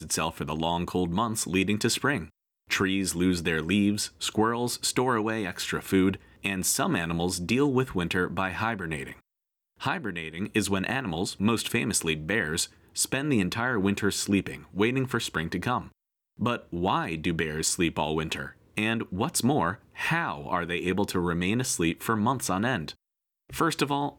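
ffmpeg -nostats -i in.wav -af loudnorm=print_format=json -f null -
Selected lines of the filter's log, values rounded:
"input_i" : "-27.5",
"input_tp" : "-12.4",
"input_lra" : "2.3",
"input_thresh" : "-37.7",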